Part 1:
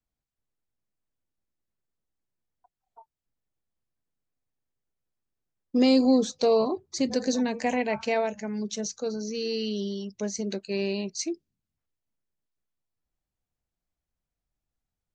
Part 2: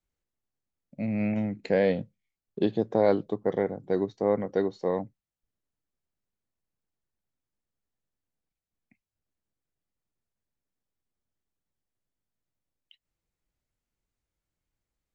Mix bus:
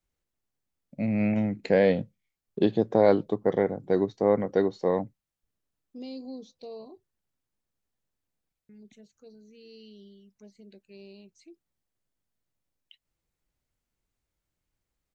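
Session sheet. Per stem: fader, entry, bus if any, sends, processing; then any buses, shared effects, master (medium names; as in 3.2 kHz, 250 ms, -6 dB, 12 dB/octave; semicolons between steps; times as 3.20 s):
-19.0 dB, 0.20 s, muted 7.04–8.69 s, no send, touch-sensitive phaser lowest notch 390 Hz, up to 1.6 kHz, full sweep at -25 dBFS
+2.5 dB, 0.00 s, no send, none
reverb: none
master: none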